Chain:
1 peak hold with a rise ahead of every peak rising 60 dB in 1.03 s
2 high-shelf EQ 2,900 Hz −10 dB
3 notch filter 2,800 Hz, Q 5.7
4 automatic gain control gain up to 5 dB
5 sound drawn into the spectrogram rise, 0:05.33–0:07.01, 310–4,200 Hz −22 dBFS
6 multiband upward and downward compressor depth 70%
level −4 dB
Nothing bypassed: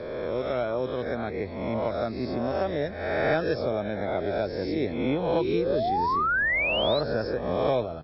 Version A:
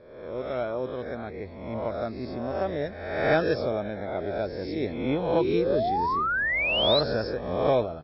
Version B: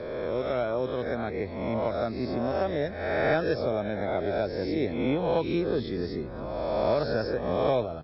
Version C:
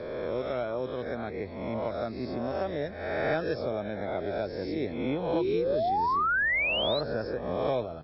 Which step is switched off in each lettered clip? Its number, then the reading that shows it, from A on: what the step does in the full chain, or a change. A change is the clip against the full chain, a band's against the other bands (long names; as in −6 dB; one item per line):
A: 6, change in crest factor +2.5 dB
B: 5, 2 kHz band −7.0 dB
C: 4, change in momentary loudness spread +2 LU